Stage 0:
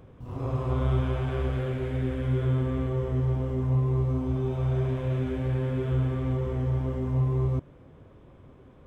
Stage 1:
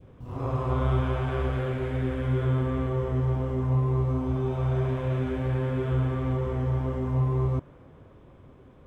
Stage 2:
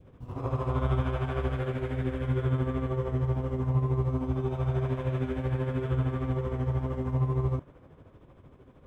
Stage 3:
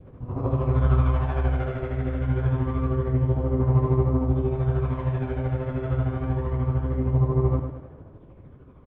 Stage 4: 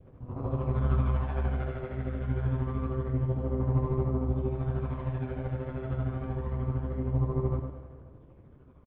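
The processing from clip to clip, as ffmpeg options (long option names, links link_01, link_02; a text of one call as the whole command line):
ffmpeg -i in.wav -af "adynamicequalizer=threshold=0.00398:dfrequency=1100:dqfactor=0.76:tfrequency=1100:tqfactor=0.76:attack=5:release=100:ratio=0.375:range=2.5:mode=boostabove:tftype=bell" out.wav
ffmpeg -i in.wav -af "tremolo=f=13:d=0.56" out.wav
ffmpeg -i in.wav -filter_complex "[0:a]aphaser=in_gain=1:out_gain=1:delay=1.5:decay=0.38:speed=0.26:type=sinusoidal,aecho=1:1:103|206|309|412|515:0.422|0.181|0.078|0.0335|0.0144,acrossover=split=810[link_01][link_02];[link_02]adynamicsmooth=sensitivity=1.5:basefreq=2500[link_03];[link_01][link_03]amix=inputs=2:normalize=0,volume=3dB" out.wav
ffmpeg -i in.wav -af "tremolo=f=140:d=0.519,aecho=1:1:132|264|396|528|660|792:0.158|0.0919|0.0533|0.0309|0.0179|0.0104,aresample=11025,aresample=44100,volume=-4.5dB" out.wav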